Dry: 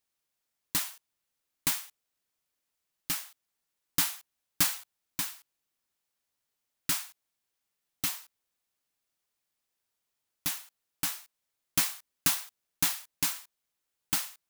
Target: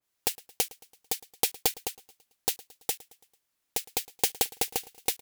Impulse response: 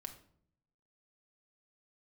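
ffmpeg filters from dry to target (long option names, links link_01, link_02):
-af "asetrate=122598,aresample=44100,aecho=1:1:111|222|333|444:0.0891|0.0455|0.0232|0.0118,adynamicequalizer=threshold=0.002:dfrequency=2100:dqfactor=0.7:tfrequency=2100:tqfactor=0.7:attack=5:release=100:ratio=0.375:range=3:mode=cutabove:tftype=highshelf,volume=8.5dB"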